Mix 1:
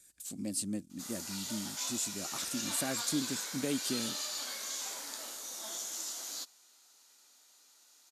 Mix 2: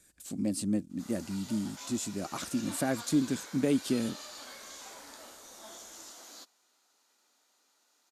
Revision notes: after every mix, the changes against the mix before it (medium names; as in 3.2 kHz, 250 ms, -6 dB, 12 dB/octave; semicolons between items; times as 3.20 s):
speech +7.5 dB; master: add treble shelf 2.7 kHz -11.5 dB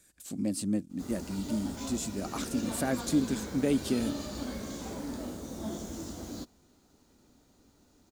background: remove high-pass 1 kHz 12 dB/octave; master: remove brick-wall FIR low-pass 14 kHz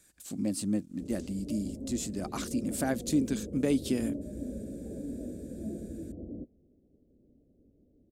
background: add steep low-pass 580 Hz 48 dB/octave